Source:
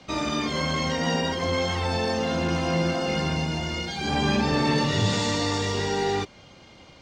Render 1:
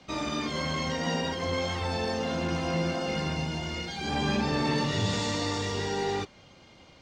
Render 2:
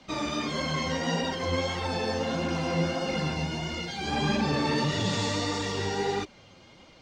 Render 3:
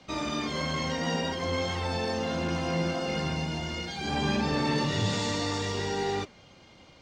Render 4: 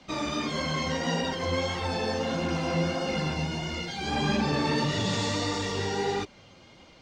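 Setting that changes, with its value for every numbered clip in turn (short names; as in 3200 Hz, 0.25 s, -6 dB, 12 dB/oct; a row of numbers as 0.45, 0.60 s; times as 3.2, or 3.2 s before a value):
flange, regen: -87, +28, +91, -21%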